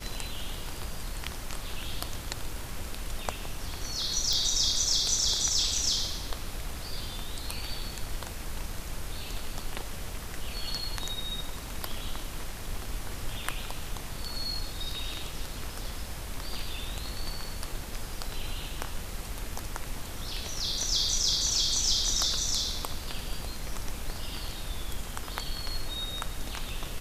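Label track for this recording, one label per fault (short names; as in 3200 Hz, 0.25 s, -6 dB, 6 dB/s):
4.330000	4.330000	pop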